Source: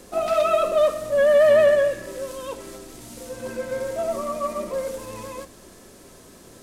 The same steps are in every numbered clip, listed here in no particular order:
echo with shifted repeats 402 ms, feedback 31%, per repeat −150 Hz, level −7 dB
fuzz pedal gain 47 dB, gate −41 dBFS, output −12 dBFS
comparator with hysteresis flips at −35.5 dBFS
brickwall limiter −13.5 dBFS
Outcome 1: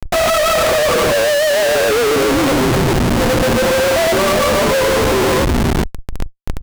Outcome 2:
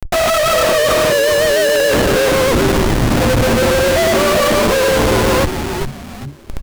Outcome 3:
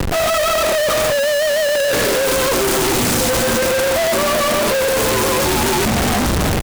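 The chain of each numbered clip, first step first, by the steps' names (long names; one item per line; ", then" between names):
echo with shifted repeats, then comparator with hysteresis, then brickwall limiter, then fuzz pedal
brickwall limiter, then comparator with hysteresis, then fuzz pedal, then echo with shifted repeats
fuzz pedal, then echo with shifted repeats, then comparator with hysteresis, then brickwall limiter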